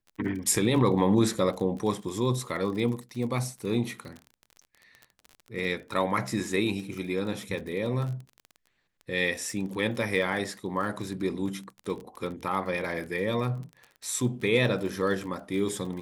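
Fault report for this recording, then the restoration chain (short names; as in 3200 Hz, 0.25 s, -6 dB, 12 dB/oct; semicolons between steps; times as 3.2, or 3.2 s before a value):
crackle 35/s -35 dBFS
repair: de-click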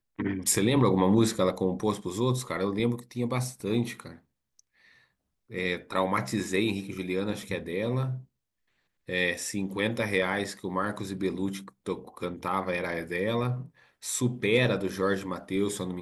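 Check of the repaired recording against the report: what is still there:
none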